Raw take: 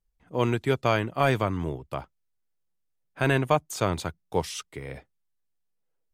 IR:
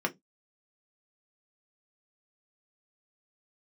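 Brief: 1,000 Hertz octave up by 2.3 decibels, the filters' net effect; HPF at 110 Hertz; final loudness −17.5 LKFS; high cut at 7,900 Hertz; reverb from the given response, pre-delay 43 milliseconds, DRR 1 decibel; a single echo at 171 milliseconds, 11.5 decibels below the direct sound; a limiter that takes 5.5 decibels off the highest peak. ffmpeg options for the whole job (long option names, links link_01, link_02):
-filter_complex "[0:a]highpass=110,lowpass=7900,equalizer=frequency=1000:width_type=o:gain=3,alimiter=limit=-13dB:level=0:latency=1,aecho=1:1:171:0.266,asplit=2[link_01][link_02];[1:a]atrim=start_sample=2205,adelay=43[link_03];[link_02][link_03]afir=irnorm=-1:irlink=0,volume=-8.5dB[link_04];[link_01][link_04]amix=inputs=2:normalize=0,volume=8dB"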